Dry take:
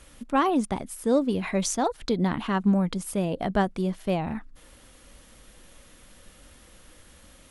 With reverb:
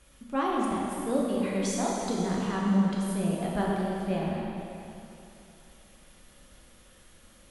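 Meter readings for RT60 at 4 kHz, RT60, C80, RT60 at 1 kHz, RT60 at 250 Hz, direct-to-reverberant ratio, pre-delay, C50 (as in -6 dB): 2.8 s, 3.0 s, -0.5 dB, 3.0 s, 2.7 s, -4.0 dB, 4 ms, -1.5 dB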